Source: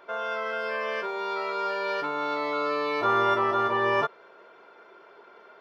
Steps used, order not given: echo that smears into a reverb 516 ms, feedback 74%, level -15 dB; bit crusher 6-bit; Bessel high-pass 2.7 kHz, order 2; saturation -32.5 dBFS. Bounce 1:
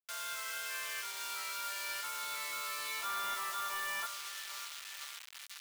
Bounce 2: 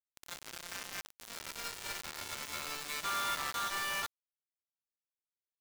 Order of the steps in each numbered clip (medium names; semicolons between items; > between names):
echo that smears into a reverb > bit crusher > Bessel high-pass > saturation; Bessel high-pass > saturation > echo that smears into a reverb > bit crusher